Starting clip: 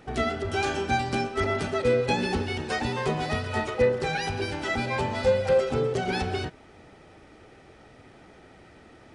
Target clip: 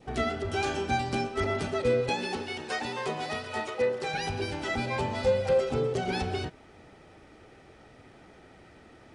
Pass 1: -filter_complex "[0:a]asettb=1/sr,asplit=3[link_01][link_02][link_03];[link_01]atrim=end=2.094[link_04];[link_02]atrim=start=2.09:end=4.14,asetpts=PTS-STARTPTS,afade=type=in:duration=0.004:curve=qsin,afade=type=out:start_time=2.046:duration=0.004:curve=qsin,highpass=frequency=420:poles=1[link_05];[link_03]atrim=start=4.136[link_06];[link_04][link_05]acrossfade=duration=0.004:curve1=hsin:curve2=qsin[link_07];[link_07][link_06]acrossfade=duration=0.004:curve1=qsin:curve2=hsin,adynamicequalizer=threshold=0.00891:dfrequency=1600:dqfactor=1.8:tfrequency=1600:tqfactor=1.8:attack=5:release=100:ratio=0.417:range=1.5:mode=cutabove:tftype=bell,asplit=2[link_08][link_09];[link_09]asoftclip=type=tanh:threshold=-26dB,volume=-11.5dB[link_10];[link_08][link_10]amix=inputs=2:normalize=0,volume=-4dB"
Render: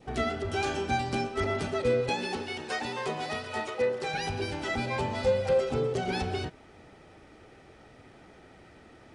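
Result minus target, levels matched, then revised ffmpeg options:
soft clipping: distortion +7 dB
-filter_complex "[0:a]asettb=1/sr,asplit=3[link_01][link_02][link_03];[link_01]atrim=end=2.094[link_04];[link_02]atrim=start=2.09:end=4.14,asetpts=PTS-STARTPTS,afade=type=in:duration=0.004:curve=qsin,afade=type=out:start_time=2.046:duration=0.004:curve=qsin,highpass=frequency=420:poles=1[link_05];[link_03]atrim=start=4.136[link_06];[link_04][link_05]acrossfade=duration=0.004:curve1=hsin:curve2=qsin[link_07];[link_07][link_06]acrossfade=duration=0.004:curve1=qsin:curve2=hsin,adynamicequalizer=threshold=0.00891:dfrequency=1600:dqfactor=1.8:tfrequency=1600:tqfactor=1.8:attack=5:release=100:ratio=0.417:range=1.5:mode=cutabove:tftype=bell,asplit=2[link_08][link_09];[link_09]asoftclip=type=tanh:threshold=-19dB,volume=-11.5dB[link_10];[link_08][link_10]amix=inputs=2:normalize=0,volume=-4dB"

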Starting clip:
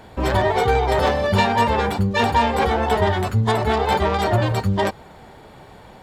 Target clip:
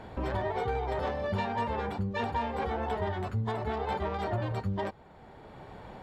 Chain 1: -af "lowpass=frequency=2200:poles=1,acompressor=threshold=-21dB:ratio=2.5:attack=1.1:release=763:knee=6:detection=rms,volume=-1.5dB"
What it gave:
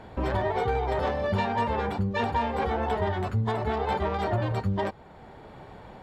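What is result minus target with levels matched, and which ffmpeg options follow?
downward compressor: peak gain reduction −5 dB
-af "lowpass=frequency=2200:poles=1,acompressor=threshold=-29dB:ratio=2.5:attack=1.1:release=763:knee=6:detection=rms,volume=-1.5dB"

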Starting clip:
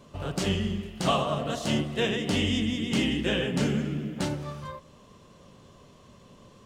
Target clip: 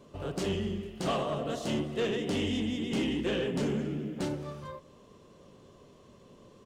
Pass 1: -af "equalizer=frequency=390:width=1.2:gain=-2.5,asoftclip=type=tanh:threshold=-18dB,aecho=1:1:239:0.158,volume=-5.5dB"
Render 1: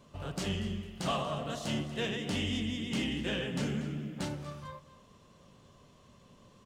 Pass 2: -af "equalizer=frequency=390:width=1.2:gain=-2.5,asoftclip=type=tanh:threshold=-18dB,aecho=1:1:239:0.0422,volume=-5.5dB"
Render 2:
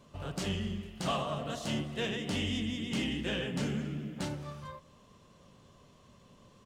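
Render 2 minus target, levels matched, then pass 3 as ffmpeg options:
500 Hz band −4.0 dB
-af "equalizer=frequency=390:width=1.2:gain=7.5,asoftclip=type=tanh:threshold=-18dB,aecho=1:1:239:0.0422,volume=-5.5dB"

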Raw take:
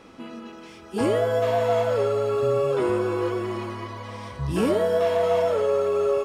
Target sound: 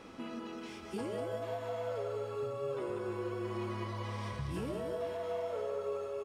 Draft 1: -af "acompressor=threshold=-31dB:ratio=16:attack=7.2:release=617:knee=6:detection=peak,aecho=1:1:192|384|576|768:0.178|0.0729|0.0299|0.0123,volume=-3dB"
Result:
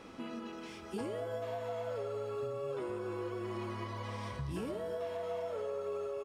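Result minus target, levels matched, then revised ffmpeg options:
echo-to-direct −9 dB
-af "acompressor=threshold=-31dB:ratio=16:attack=7.2:release=617:knee=6:detection=peak,aecho=1:1:192|384|576|768|960:0.501|0.205|0.0842|0.0345|0.0142,volume=-3dB"

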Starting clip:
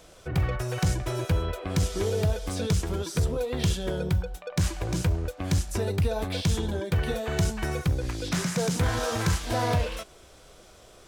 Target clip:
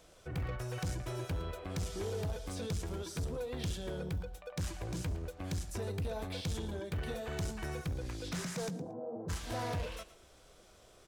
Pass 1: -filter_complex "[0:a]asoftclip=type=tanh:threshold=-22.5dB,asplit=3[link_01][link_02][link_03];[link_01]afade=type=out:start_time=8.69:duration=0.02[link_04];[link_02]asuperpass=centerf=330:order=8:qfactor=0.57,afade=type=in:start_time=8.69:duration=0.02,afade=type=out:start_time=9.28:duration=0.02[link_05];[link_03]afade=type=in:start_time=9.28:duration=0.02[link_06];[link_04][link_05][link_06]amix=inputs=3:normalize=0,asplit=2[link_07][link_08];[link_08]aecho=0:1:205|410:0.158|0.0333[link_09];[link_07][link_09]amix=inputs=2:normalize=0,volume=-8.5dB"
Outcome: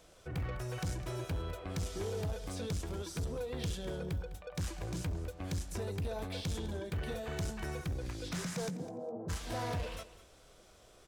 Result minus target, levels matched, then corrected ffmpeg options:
echo 91 ms late
-filter_complex "[0:a]asoftclip=type=tanh:threshold=-22.5dB,asplit=3[link_01][link_02][link_03];[link_01]afade=type=out:start_time=8.69:duration=0.02[link_04];[link_02]asuperpass=centerf=330:order=8:qfactor=0.57,afade=type=in:start_time=8.69:duration=0.02,afade=type=out:start_time=9.28:duration=0.02[link_05];[link_03]afade=type=in:start_time=9.28:duration=0.02[link_06];[link_04][link_05][link_06]amix=inputs=3:normalize=0,asplit=2[link_07][link_08];[link_08]aecho=0:1:114|228:0.158|0.0333[link_09];[link_07][link_09]amix=inputs=2:normalize=0,volume=-8.5dB"

